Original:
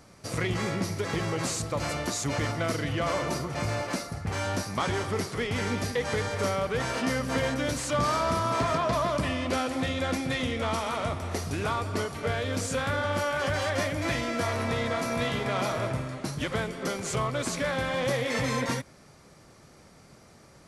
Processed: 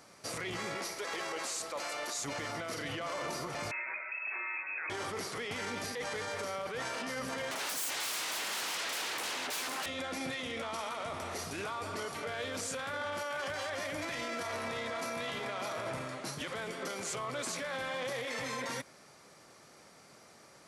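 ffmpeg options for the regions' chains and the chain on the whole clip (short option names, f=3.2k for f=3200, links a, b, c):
-filter_complex "[0:a]asettb=1/sr,asplit=3[a][b][c];[a]atrim=end=0.754[d];[b]atrim=start=0.75:end=2.18,asetpts=PTS-STARTPTS,afade=t=in:d=0.004:c=qsin,afade=t=out:st=1.426:d=0.004:c=qsin,highpass=390,aeval=exprs='val(0)+0.00251*(sin(2*PI*60*n/s)+sin(2*PI*2*60*n/s)/2+sin(2*PI*3*60*n/s)/3+sin(2*PI*4*60*n/s)/4+sin(2*PI*5*60*n/s)/5)':c=same[e];[c]atrim=start=2.176[f];[d][e]acrossfade=d=0.004:c1=hsin:c2=qsin[g];[g][f]acrossfade=d=0.004:c1=qsin:c2=hsin,asettb=1/sr,asplit=3[h][i][j];[h]atrim=end=3.714[k];[i]atrim=start=3.71:end=4.9,asetpts=PTS-STARTPTS,afade=t=in:d=0.004:c=qsin,afade=t=out:st=1.186:d=0.004:c=qsin,acompressor=threshold=-35dB:ratio=3:attack=3.2:release=140:knee=1:detection=peak,lowpass=f=2.3k:t=q:w=0.5098,lowpass=f=2.3k:t=q:w=0.6013,lowpass=f=2.3k:t=q:w=0.9,lowpass=f=2.3k:t=q:w=2.563,afreqshift=-2700[l];[j]atrim=start=4.896[m];[k][l]acrossfade=d=0.004:c1=hsin:c2=qsin[n];[n][m]acrossfade=d=0.004:c1=qsin:c2=hsin,asettb=1/sr,asplit=3[o][p][q];[o]atrim=end=7.514[r];[p]atrim=start=7.51:end=9.86,asetpts=PTS-STARTPTS,afade=t=in:d=0.004:c=qsin,afade=t=out:st=2.346:d=0.004:c=qsin,highshelf=f=7.5k:g=6.5,aeval=exprs='0.168*sin(PI/2*7.08*val(0)/0.168)':c=same,highpass=f=190:p=1[s];[q]atrim=start=9.856[t];[r][s]acrossfade=d=0.004:c1=hsin:c2=qsin[u];[u][t]acrossfade=d=0.004:c1=qsin:c2=hsin,highpass=f=500:p=1,alimiter=level_in=5.5dB:limit=-24dB:level=0:latency=1:release=14,volume=-5.5dB"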